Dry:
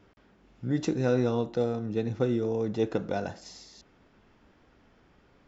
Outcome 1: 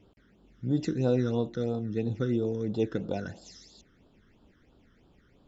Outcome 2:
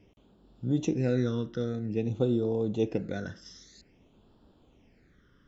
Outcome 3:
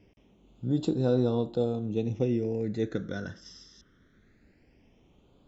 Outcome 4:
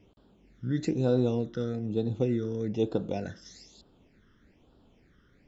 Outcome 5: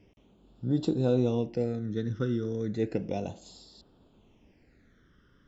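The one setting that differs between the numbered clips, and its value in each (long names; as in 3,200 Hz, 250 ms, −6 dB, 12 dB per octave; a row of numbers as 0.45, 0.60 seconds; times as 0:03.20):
all-pass phaser, speed: 3, 0.51, 0.21, 1.1, 0.33 Hertz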